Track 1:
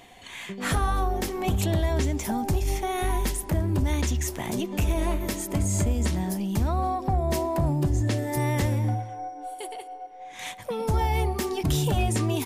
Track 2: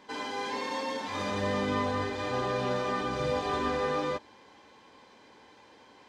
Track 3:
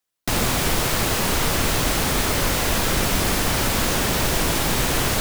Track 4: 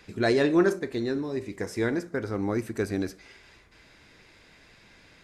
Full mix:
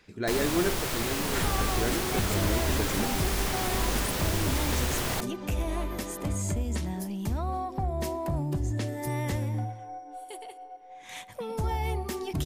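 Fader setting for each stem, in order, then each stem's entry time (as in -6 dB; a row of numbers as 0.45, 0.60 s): -5.5, -13.0, -9.5, -6.0 dB; 0.70, 2.25, 0.00, 0.00 s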